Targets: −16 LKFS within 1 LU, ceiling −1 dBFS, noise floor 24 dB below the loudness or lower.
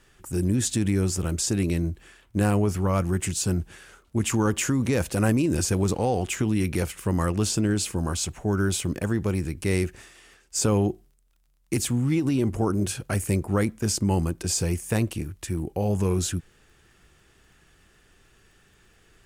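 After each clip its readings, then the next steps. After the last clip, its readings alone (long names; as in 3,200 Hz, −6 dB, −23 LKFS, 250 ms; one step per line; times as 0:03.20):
crackle rate 27 per second; integrated loudness −25.5 LKFS; sample peak −11.5 dBFS; target loudness −16.0 LKFS
→ click removal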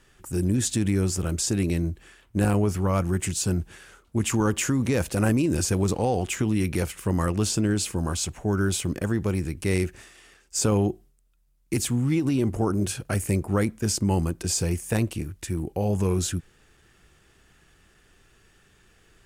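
crackle rate 0.52 per second; integrated loudness −25.5 LKFS; sample peak −11.5 dBFS; target loudness −16.0 LKFS
→ level +9.5 dB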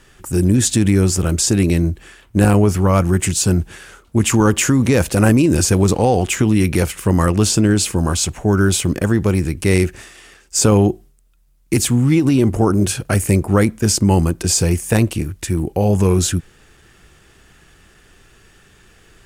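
integrated loudness −16.0 LKFS; sample peak −1.5 dBFS; background noise floor −51 dBFS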